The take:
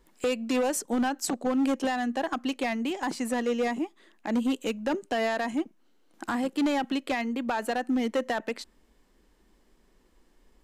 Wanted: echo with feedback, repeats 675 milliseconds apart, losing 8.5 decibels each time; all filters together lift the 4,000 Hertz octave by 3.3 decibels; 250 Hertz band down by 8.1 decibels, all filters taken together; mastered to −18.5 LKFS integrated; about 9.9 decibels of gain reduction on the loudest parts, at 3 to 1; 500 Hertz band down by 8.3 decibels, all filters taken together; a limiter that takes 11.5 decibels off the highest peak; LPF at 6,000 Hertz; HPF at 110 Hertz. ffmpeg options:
ffmpeg -i in.wav -af "highpass=110,lowpass=6000,equalizer=frequency=250:width_type=o:gain=-6.5,equalizer=frequency=500:width_type=o:gain=-8.5,equalizer=frequency=4000:width_type=o:gain=5.5,acompressor=threshold=-41dB:ratio=3,alimiter=level_in=11dB:limit=-24dB:level=0:latency=1,volume=-11dB,aecho=1:1:675|1350|2025|2700:0.376|0.143|0.0543|0.0206,volume=27dB" out.wav

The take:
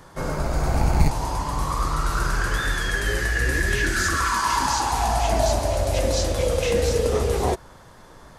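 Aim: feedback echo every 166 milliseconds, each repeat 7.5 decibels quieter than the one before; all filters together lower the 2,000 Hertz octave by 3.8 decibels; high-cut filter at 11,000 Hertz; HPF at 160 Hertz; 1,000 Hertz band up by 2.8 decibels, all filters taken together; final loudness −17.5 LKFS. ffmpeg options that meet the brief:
ffmpeg -i in.wav -af "highpass=160,lowpass=11000,equalizer=frequency=1000:width_type=o:gain=5,equalizer=frequency=2000:width_type=o:gain=-7,aecho=1:1:166|332|498|664|830:0.422|0.177|0.0744|0.0312|0.0131,volume=5.5dB" out.wav

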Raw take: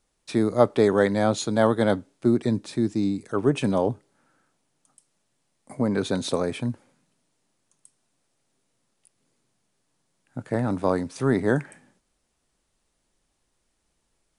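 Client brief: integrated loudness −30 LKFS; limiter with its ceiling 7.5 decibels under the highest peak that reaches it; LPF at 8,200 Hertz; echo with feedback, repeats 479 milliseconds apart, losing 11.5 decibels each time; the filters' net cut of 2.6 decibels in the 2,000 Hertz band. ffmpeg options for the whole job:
ffmpeg -i in.wav -af "lowpass=8200,equalizer=frequency=2000:width_type=o:gain=-3.5,alimiter=limit=-13dB:level=0:latency=1,aecho=1:1:479|958|1437:0.266|0.0718|0.0194,volume=-4dB" out.wav

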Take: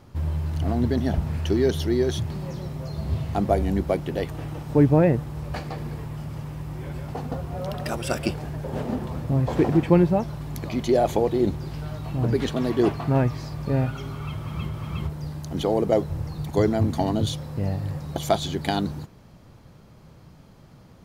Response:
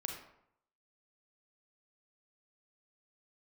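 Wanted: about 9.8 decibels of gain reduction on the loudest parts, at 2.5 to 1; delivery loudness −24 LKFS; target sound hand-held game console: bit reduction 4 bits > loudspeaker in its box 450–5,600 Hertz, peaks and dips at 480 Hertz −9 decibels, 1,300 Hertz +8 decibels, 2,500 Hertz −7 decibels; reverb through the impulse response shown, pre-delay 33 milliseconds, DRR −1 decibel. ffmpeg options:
-filter_complex "[0:a]acompressor=threshold=-28dB:ratio=2.5,asplit=2[link_01][link_02];[1:a]atrim=start_sample=2205,adelay=33[link_03];[link_02][link_03]afir=irnorm=-1:irlink=0,volume=1dB[link_04];[link_01][link_04]amix=inputs=2:normalize=0,acrusher=bits=3:mix=0:aa=0.000001,highpass=450,equalizer=frequency=480:width_type=q:width=4:gain=-9,equalizer=frequency=1300:width_type=q:width=4:gain=8,equalizer=frequency=2500:width_type=q:width=4:gain=-7,lowpass=frequency=5600:width=0.5412,lowpass=frequency=5600:width=1.3066,volume=6dB"

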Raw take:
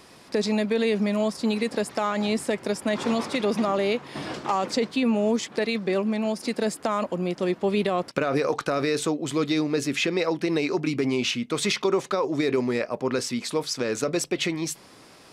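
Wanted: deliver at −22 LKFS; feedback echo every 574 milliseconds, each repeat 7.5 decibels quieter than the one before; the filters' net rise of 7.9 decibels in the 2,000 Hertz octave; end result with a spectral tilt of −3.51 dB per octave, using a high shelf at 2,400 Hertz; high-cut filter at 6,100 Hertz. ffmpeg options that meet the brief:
ffmpeg -i in.wav -af "lowpass=6100,equalizer=frequency=2000:width_type=o:gain=5.5,highshelf=frequency=2400:gain=8,aecho=1:1:574|1148|1722|2296|2870:0.422|0.177|0.0744|0.0312|0.0131,volume=0.5dB" out.wav

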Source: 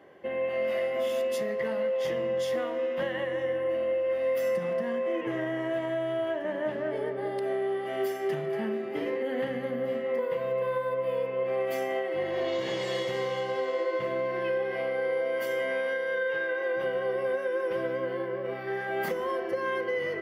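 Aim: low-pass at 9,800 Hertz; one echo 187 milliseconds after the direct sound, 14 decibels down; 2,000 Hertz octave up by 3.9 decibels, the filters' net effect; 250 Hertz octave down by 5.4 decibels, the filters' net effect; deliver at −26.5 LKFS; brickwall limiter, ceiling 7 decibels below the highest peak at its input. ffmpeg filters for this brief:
ffmpeg -i in.wav -af "lowpass=9800,equalizer=frequency=250:width_type=o:gain=-8.5,equalizer=frequency=2000:width_type=o:gain=5,alimiter=level_in=1dB:limit=-24dB:level=0:latency=1,volume=-1dB,aecho=1:1:187:0.2,volume=5.5dB" out.wav

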